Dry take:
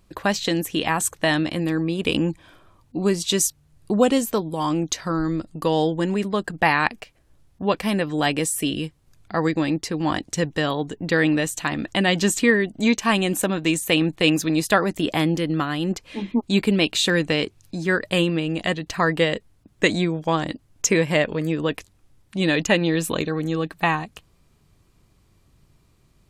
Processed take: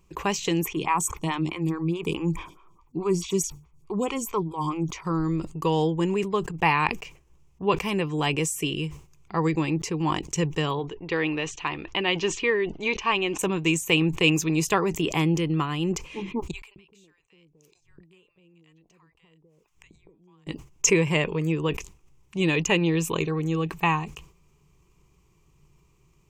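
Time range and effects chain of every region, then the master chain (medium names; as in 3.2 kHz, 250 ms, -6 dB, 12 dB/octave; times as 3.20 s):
0.63–5.05 s: comb 0.9 ms, depth 43% + lamp-driven phase shifter 4.7 Hz
10.79–13.39 s: low-pass 4.6 kHz 24 dB/octave + peaking EQ 170 Hz -10.5 dB 1.3 oct
16.51–20.47 s: compression 3:1, threshold -26 dBFS + inverted gate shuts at -32 dBFS, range -28 dB + bands offset in time highs, lows 250 ms, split 800 Hz
whole clip: rippled EQ curve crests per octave 0.74, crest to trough 11 dB; decay stretcher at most 130 dB/s; trim -4.5 dB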